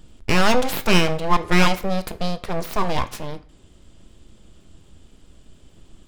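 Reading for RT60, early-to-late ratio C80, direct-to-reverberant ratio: 0.45 s, 21.0 dB, 9.5 dB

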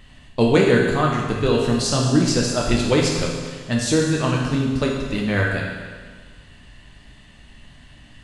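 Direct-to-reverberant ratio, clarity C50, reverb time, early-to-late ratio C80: -2.0 dB, 1.5 dB, 1.6 s, 3.5 dB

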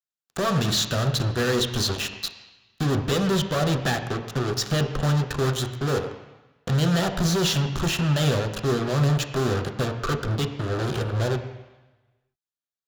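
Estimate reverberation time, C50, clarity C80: 1.1 s, 9.0 dB, 10.5 dB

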